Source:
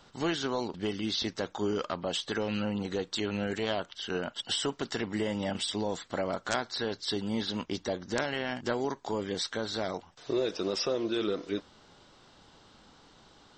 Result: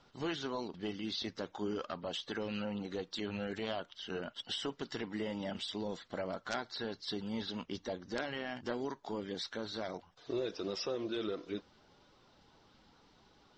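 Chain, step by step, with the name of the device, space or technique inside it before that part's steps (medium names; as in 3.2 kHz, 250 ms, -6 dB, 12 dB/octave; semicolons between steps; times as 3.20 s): clip after many re-uploads (low-pass 6.1 kHz 24 dB/octave; coarse spectral quantiser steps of 15 dB); trim -6.5 dB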